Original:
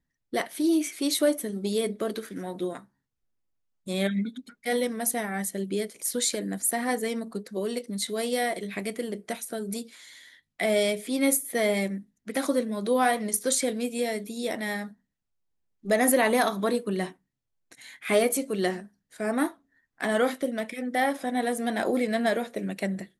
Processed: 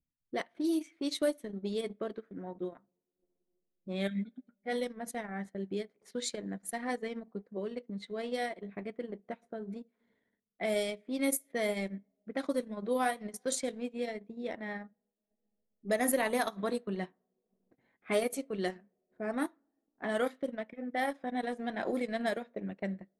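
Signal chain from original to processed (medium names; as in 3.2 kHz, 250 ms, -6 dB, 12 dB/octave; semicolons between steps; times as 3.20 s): two-slope reverb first 0.42 s, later 2.8 s, from -18 dB, DRR 18.5 dB; transient shaper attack +1 dB, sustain -12 dB; level-controlled noise filter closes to 490 Hz, open at -19.5 dBFS; trim -7.5 dB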